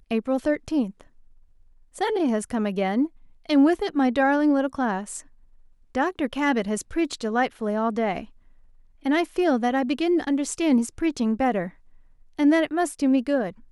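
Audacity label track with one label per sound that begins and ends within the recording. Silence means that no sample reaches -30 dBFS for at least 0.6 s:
1.960000	5.190000	sound
5.950000	8.210000	sound
9.050000	11.680000	sound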